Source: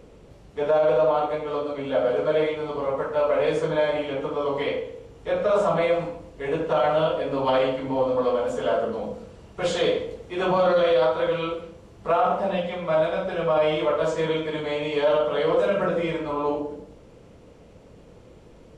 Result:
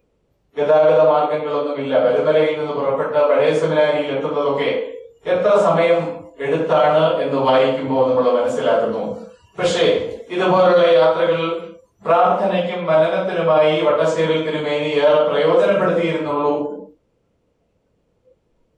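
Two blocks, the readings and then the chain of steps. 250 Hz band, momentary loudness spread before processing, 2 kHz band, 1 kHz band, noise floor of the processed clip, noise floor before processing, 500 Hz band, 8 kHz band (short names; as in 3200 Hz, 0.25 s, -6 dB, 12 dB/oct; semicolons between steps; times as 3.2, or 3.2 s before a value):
+7.0 dB, 10 LU, +7.0 dB, +7.0 dB, -65 dBFS, -49 dBFS, +7.0 dB, n/a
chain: spectral noise reduction 23 dB; gain +7 dB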